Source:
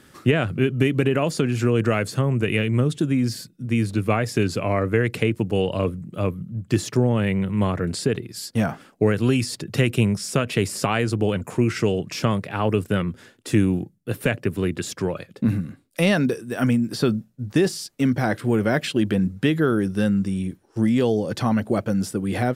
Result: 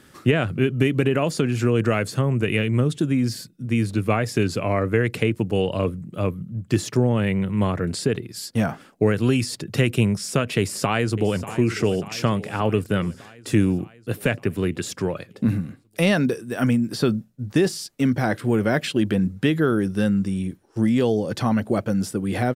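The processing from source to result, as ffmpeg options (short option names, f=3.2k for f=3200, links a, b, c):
-filter_complex "[0:a]asplit=2[a][b];[b]afade=t=in:st=10.58:d=0.01,afade=t=out:st=11.48:d=0.01,aecho=0:1:590|1180|1770|2360|2950|3540|4130|4720:0.211349|0.137377|0.0892949|0.0580417|0.0377271|0.0245226|0.0159397|0.0103608[c];[a][c]amix=inputs=2:normalize=0"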